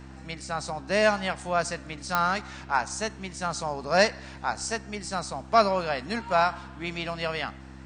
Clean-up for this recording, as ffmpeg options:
ffmpeg -i in.wav -af "adeclick=threshold=4,bandreject=frequency=66:width_type=h:width=4,bandreject=frequency=132:width_type=h:width=4,bandreject=frequency=198:width_type=h:width=4,bandreject=frequency=264:width_type=h:width=4,bandreject=frequency=330:width_type=h:width=4" out.wav

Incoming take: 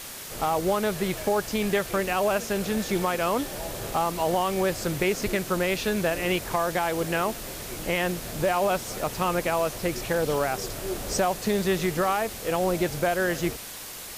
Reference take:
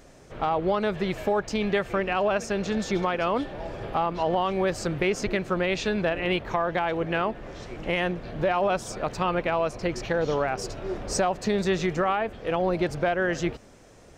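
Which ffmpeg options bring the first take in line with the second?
ffmpeg -i in.wav -af "afwtdn=0.013" out.wav

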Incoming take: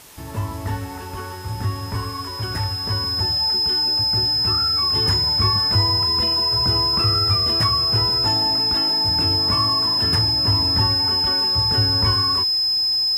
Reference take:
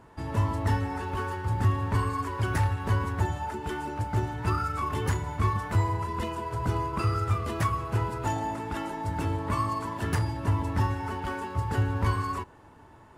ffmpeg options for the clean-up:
ffmpeg -i in.wav -af "bandreject=frequency=5100:width=30,afwtdn=0.0063,asetnsamples=nb_out_samples=441:pad=0,asendcmd='4.95 volume volume -4dB',volume=0dB" out.wav

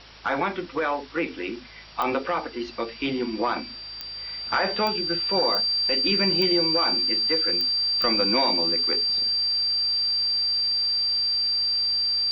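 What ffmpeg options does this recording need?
ffmpeg -i in.wav -af "adeclick=threshold=4,bandreject=frequency=53.4:width_type=h:width=4,bandreject=frequency=106.8:width_type=h:width=4,bandreject=frequency=160.2:width_type=h:width=4,bandreject=frequency=4700:width=30,afwtdn=0.0071" out.wav

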